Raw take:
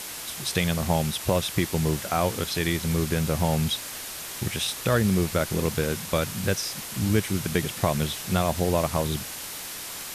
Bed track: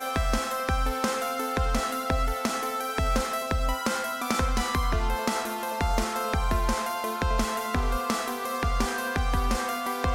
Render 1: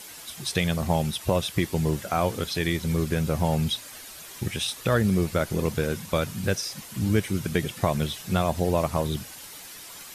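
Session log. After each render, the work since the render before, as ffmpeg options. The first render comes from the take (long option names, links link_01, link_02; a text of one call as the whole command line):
ffmpeg -i in.wav -af "afftdn=noise_reduction=9:noise_floor=-37" out.wav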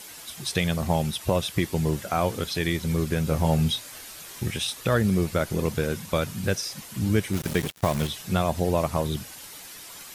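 ffmpeg -i in.wav -filter_complex "[0:a]asettb=1/sr,asplit=3[link_01][link_02][link_03];[link_01]atrim=end=3.264[link_04];[link_02]atrim=start=3.26:end=4.58,asetpts=PTS-STARTPTS,afade=type=in:duration=0.004:curve=qsin,afade=type=out:start_time=1.316:duration=0.004:curve=qsin,asplit=2[link_05][link_06];[link_06]adelay=25,volume=-7dB[link_07];[link_05][link_07]amix=inputs=2:normalize=0,atrim=end_sample=58212[link_08];[link_03]atrim=start=4.576[link_09];[link_04][link_08]acrossfade=duration=0.004:curve1=hsin:curve2=qsin[link_10];[link_10][link_09]acrossfade=duration=0.004:curve1=qsin:curve2=hsin,asplit=3[link_11][link_12][link_13];[link_11]afade=type=out:start_time=7.32:duration=0.02[link_14];[link_12]acrusher=bits=4:mix=0:aa=0.5,afade=type=in:start_time=7.32:duration=0.02,afade=type=out:start_time=8.07:duration=0.02[link_15];[link_13]afade=type=in:start_time=8.07:duration=0.02[link_16];[link_14][link_15][link_16]amix=inputs=3:normalize=0" out.wav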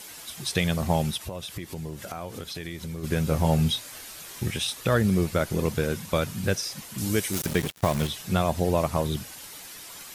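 ffmpeg -i in.wav -filter_complex "[0:a]asplit=3[link_01][link_02][link_03];[link_01]afade=type=out:start_time=1.17:duration=0.02[link_04];[link_02]acompressor=threshold=-33dB:ratio=4:attack=3.2:release=140:knee=1:detection=peak,afade=type=in:start_time=1.17:duration=0.02,afade=type=out:start_time=3.03:duration=0.02[link_05];[link_03]afade=type=in:start_time=3.03:duration=0.02[link_06];[link_04][link_05][link_06]amix=inputs=3:normalize=0,asettb=1/sr,asplit=3[link_07][link_08][link_09];[link_07]atrim=end=6.984[link_10];[link_08]atrim=start=6.98:end=7.46,asetpts=PTS-STARTPTS,afade=type=in:duration=0.004:curve=qsin,afade=type=out:start_time=0.476:duration=0.004:curve=qsin,bass=frequency=250:gain=-6,treble=frequency=4000:gain=9[link_11];[link_09]atrim=start=7.456[link_12];[link_10][link_11]acrossfade=duration=0.004:curve1=hsin:curve2=qsin[link_13];[link_13][link_12]acrossfade=duration=0.004:curve1=qsin:curve2=hsin" out.wav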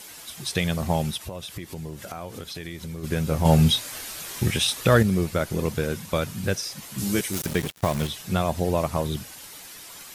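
ffmpeg -i in.wav -filter_complex "[0:a]asettb=1/sr,asplit=3[link_01][link_02][link_03];[link_01]atrim=end=3.454[link_04];[link_02]atrim=start=3.45:end=5.03,asetpts=PTS-STARTPTS,afade=type=in:duration=0.004:curve=qsin,afade=type=out:start_time=1.576:duration=0.004:curve=qsin,acontrast=41[link_05];[link_03]atrim=start=5.026[link_06];[link_04][link_05]acrossfade=duration=0.004:curve1=hsin:curve2=qsin[link_07];[link_07][link_06]acrossfade=duration=0.004:curve1=qsin:curve2=hsin,asettb=1/sr,asplit=3[link_08][link_09][link_10];[link_08]atrim=end=6.804[link_11];[link_09]atrim=start=6.8:end=7.21,asetpts=PTS-STARTPTS,afade=type=in:duration=0.004:curve=qsin,afade=type=out:start_time=0.406:duration=0.004:curve=qsin,asplit=2[link_12][link_13];[link_13]adelay=15,volume=-3.5dB[link_14];[link_12][link_14]amix=inputs=2:normalize=0,atrim=end_sample=18081[link_15];[link_10]atrim=start=7.206[link_16];[link_11][link_15]acrossfade=duration=0.004:curve1=hsin:curve2=qsin[link_17];[link_17][link_16]acrossfade=duration=0.004:curve1=qsin:curve2=hsin" out.wav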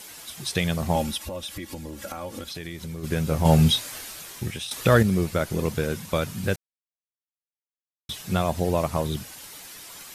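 ffmpeg -i in.wav -filter_complex "[0:a]asettb=1/sr,asplit=3[link_01][link_02][link_03];[link_01]atrim=end=0.954[link_04];[link_02]atrim=start=0.95:end=2.49,asetpts=PTS-STARTPTS,afade=type=in:duration=0.004:curve=qsin,afade=type=out:start_time=1.536:duration=0.004:curve=qsin,aecho=1:1:3.6:0.76,atrim=end_sample=67914[link_05];[link_03]atrim=start=2.486[link_06];[link_04][link_05]acrossfade=duration=0.004:curve1=hsin:curve2=qsin[link_07];[link_07][link_06]acrossfade=duration=0.004:curve1=qsin:curve2=hsin,asplit=4[link_08][link_09][link_10][link_11];[link_08]atrim=end=4.71,asetpts=PTS-STARTPTS,afade=type=out:start_time=3.8:duration=0.91:silence=0.223872[link_12];[link_09]atrim=start=4.71:end=6.56,asetpts=PTS-STARTPTS,afade=type=in:duration=0.004:curve=hsin:silence=0.223872,afade=type=out:start_time=1.846:duration=0.004:curve=hsin[link_13];[link_10]atrim=start=6.56:end=8.09,asetpts=PTS-STARTPTS,volume=0[link_14];[link_11]atrim=start=8.09,asetpts=PTS-STARTPTS,afade=type=in:duration=0.004:curve=hsin[link_15];[link_12][link_13][link_14][link_15]concat=n=4:v=0:a=1" out.wav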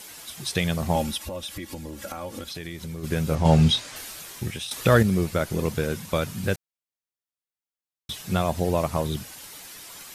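ffmpeg -i in.wav -filter_complex "[0:a]asettb=1/sr,asplit=3[link_01][link_02][link_03];[link_01]atrim=end=3.354[link_04];[link_02]atrim=start=3.35:end=3.96,asetpts=PTS-STARTPTS,afade=type=in:duration=0.004:curve=qsin,afade=type=out:start_time=0.606:duration=0.004:curve=qsin,lowpass=6700[link_05];[link_03]atrim=start=3.956[link_06];[link_04][link_05]acrossfade=duration=0.004:curve1=hsin:curve2=qsin[link_07];[link_07][link_06]acrossfade=duration=0.004:curve1=qsin:curve2=hsin" out.wav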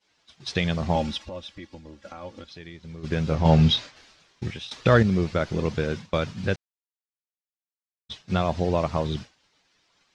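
ffmpeg -i in.wav -af "agate=range=-33dB:threshold=-29dB:ratio=3:detection=peak,lowpass=frequency=5500:width=0.5412,lowpass=frequency=5500:width=1.3066" out.wav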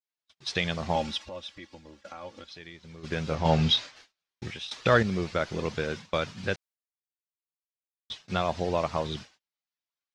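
ffmpeg -i in.wav -af "agate=range=-30dB:threshold=-50dB:ratio=16:detection=peak,lowshelf=frequency=390:gain=-9" out.wav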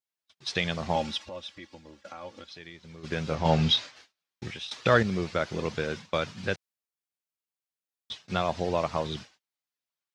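ffmpeg -i in.wav -af "highpass=69" out.wav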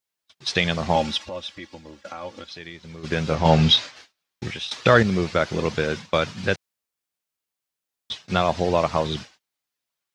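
ffmpeg -i in.wav -af "volume=7dB,alimiter=limit=-2dB:level=0:latency=1" out.wav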